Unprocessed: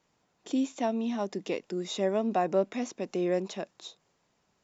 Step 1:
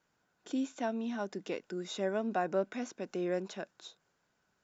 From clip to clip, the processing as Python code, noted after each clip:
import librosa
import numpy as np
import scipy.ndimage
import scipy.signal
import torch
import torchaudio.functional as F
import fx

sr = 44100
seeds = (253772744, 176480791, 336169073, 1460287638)

y = fx.peak_eq(x, sr, hz=1500.0, db=13.0, octaves=0.23)
y = y * 10.0 ** (-5.5 / 20.0)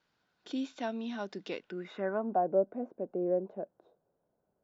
y = fx.filter_sweep_lowpass(x, sr, from_hz=4200.0, to_hz=590.0, start_s=1.54, end_s=2.48, q=2.1)
y = y * 10.0 ** (-1.5 / 20.0)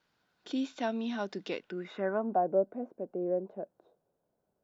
y = fx.rider(x, sr, range_db=10, speed_s=2.0)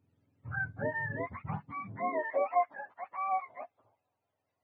y = fx.octave_mirror(x, sr, pivot_hz=640.0)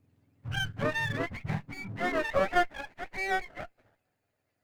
y = fx.lower_of_two(x, sr, delay_ms=0.43)
y = y * 10.0 ** (5.5 / 20.0)